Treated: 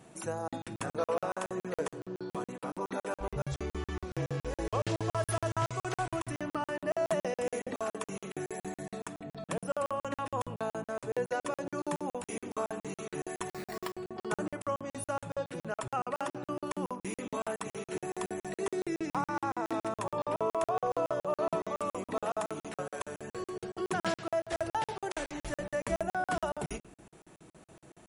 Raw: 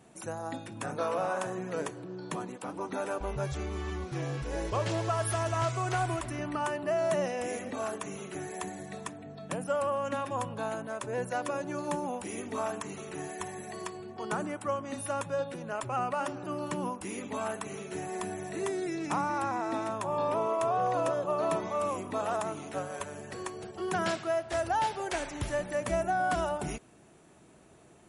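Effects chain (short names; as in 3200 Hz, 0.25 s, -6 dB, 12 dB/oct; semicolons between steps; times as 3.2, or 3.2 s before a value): dynamic EQ 460 Hz, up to +4 dB, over -46 dBFS, Q 4; in parallel at +0.5 dB: compressor, threshold -40 dBFS, peak gain reduction 14.5 dB; 13.49–13.95 on the sum: sample-rate reducer 6300 Hz, jitter 0%; reverb RT60 0.70 s, pre-delay 6 ms, DRR 12 dB; crackling interface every 0.14 s, samples 2048, zero, from 0.48; gain -4 dB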